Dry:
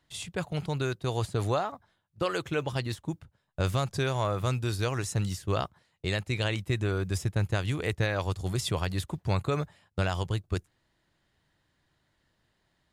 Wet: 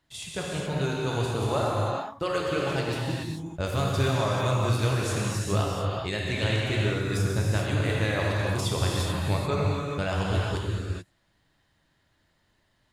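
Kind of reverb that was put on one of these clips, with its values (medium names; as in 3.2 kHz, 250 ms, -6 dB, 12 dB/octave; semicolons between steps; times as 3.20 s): gated-style reverb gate 460 ms flat, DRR -4 dB; trim -1.5 dB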